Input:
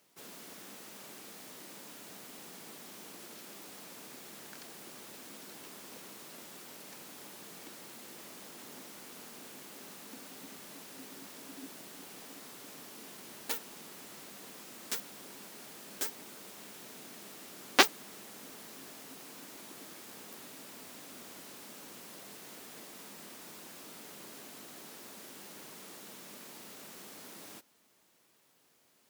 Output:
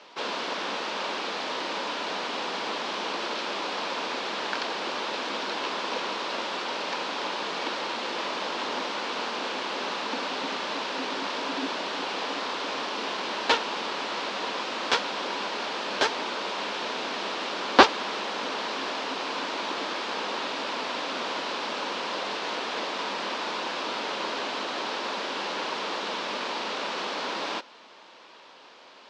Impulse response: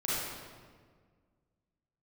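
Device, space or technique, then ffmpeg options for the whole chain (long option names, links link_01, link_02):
overdrive pedal into a guitar cabinet: -filter_complex "[0:a]asplit=2[link_01][link_02];[link_02]highpass=frequency=720:poles=1,volume=28dB,asoftclip=type=tanh:threshold=-2.5dB[link_03];[link_01][link_03]amix=inputs=2:normalize=0,lowpass=frequency=6300:poles=1,volume=-6dB,highpass=92,equalizer=frequency=150:width_type=q:width=4:gain=-7,equalizer=frequency=520:width_type=q:width=4:gain=4,equalizer=frequency=970:width_type=q:width=4:gain=6,equalizer=frequency=2000:width_type=q:width=4:gain=-4,lowpass=frequency=4500:width=0.5412,lowpass=frequency=4500:width=1.3066,volume=1.5dB"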